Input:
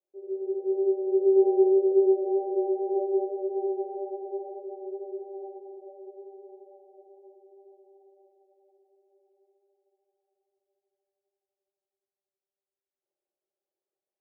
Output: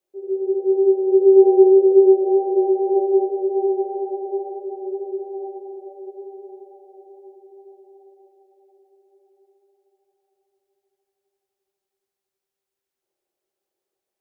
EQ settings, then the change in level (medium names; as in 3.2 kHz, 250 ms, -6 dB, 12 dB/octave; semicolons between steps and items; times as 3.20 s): band-stop 590 Hz, Q 12; +9.0 dB